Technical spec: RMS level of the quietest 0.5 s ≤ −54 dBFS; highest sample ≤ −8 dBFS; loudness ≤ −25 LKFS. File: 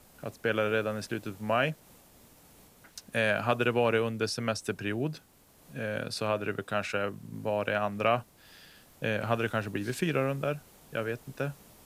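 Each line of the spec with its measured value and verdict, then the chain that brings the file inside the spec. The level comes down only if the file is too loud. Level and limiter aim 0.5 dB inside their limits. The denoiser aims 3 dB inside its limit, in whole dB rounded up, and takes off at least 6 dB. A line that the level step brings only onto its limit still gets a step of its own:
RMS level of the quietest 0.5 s −60 dBFS: in spec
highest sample −10.5 dBFS: in spec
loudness −31.0 LKFS: in spec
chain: no processing needed

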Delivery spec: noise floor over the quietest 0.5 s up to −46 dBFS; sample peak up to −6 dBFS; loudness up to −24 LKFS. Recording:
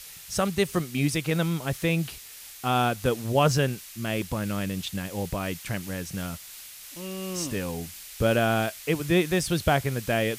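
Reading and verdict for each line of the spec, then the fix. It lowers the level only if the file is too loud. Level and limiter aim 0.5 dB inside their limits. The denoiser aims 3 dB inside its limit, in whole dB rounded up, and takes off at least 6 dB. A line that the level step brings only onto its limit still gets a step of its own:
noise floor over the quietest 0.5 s −44 dBFS: out of spec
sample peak −9.5 dBFS: in spec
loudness −27.0 LKFS: in spec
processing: broadband denoise 6 dB, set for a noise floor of −44 dBFS

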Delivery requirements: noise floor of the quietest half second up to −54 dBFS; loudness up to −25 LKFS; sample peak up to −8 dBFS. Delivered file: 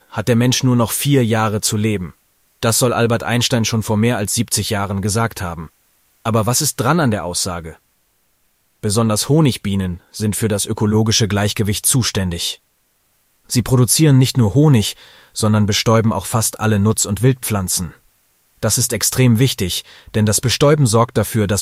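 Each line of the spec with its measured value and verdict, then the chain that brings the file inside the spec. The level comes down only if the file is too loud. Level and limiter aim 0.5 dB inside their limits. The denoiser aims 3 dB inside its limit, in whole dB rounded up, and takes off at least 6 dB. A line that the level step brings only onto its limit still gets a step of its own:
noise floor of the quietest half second −62 dBFS: in spec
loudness −16.0 LKFS: out of spec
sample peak −2.0 dBFS: out of spec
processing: level −9.5 dB

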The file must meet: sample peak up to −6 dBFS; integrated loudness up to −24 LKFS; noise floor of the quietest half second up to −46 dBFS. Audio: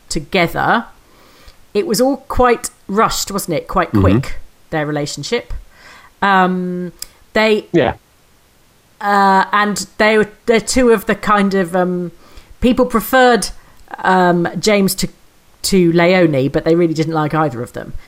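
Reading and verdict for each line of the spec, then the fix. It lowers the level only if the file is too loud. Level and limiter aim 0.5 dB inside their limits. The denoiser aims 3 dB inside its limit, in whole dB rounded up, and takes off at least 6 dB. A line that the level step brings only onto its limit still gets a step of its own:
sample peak −2.0 dBFS: out of spec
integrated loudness −15.0 LKFS: out of spec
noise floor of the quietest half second −51 dBFS: in spec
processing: level −9.5 dB

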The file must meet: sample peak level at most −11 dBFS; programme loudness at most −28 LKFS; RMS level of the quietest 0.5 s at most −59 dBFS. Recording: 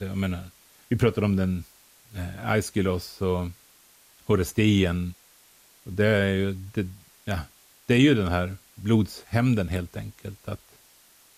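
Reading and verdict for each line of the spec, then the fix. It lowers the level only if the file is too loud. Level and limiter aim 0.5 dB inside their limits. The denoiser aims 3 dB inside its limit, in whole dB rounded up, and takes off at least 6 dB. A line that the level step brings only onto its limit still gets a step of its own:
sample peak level −7.5 dBFS: out of spec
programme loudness −25.5 LKFS: out of spec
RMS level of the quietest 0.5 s −57 dBFS: out of spec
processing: level −3 dB
brickwall limiter −11.5 dBFS

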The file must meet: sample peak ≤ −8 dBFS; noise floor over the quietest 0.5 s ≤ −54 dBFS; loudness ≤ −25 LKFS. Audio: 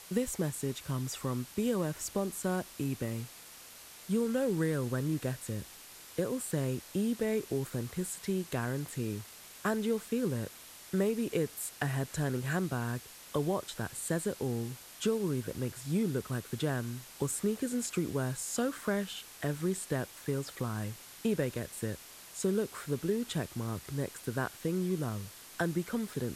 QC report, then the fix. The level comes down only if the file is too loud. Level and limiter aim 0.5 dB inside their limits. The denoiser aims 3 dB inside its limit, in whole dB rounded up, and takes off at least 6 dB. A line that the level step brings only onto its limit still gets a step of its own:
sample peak −18.5 dBFS: in spec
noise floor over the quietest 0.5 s −52 dBFS: out of spec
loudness −34.5 LKFS: in spec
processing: broadband denoise 6 dB, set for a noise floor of −52 dBFS

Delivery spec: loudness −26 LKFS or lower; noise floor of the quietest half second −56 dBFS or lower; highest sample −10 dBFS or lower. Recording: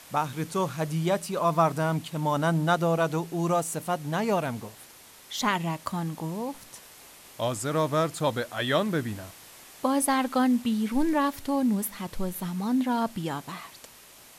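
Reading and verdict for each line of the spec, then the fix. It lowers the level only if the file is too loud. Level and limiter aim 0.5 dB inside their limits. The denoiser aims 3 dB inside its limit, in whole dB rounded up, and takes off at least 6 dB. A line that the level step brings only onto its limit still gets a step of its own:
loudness −27.5 LKFS: in spec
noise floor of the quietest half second −51 dBFS: out of spec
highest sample −11.5 dBFS: in spec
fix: broadband denoise 8 dB, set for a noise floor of −51 dBFS

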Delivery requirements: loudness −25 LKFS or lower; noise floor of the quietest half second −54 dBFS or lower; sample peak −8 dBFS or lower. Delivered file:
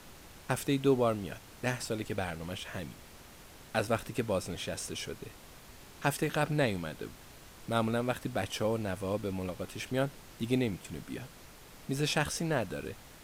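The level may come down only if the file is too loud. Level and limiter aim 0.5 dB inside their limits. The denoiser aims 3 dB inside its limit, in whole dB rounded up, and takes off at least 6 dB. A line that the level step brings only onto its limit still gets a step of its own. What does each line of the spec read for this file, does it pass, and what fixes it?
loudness −33.5 LKFS: in spec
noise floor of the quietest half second −52 dBFS: out of spec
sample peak −14.5 dBFS: in spec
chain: broadband denoise 6 dB, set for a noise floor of −52 dBFS

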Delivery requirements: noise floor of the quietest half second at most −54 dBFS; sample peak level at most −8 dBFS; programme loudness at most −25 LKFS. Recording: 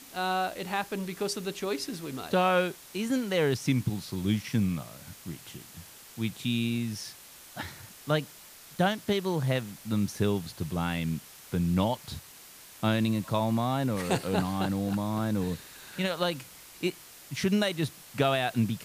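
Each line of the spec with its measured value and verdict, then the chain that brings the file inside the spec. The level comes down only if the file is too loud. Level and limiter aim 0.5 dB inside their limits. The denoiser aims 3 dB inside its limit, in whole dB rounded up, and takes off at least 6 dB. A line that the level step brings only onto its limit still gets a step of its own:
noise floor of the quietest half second −50 dBFS: out of spec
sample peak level −12.5 dBFS: in spec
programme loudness −30.0 LKFS: in spec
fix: broadband denoise 7 dB, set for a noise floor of −50 dBFS

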